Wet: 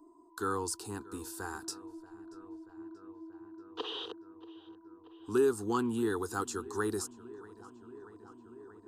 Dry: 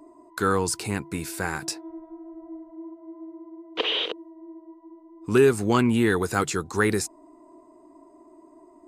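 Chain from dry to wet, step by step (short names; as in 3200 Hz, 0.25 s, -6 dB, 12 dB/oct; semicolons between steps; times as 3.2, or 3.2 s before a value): fixed phaser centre 590 Hz, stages 6; on a send: darkening echo 0.633 s, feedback 82%, low-pass 3400 Hz, level -20 dB; on the sum: gain -8 dB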